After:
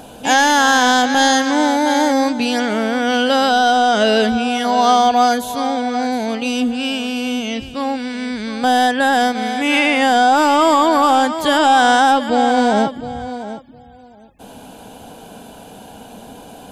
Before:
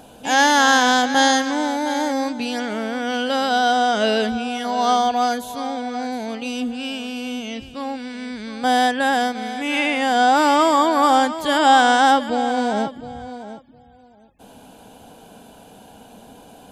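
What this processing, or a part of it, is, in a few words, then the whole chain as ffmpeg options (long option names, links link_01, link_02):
soft clipper into limiter: -af "asoftclip=type=tanh:threshold=-6dB,alimiter=limit=-11.5dB:level=0:latency=1:release=265,volume=7dB"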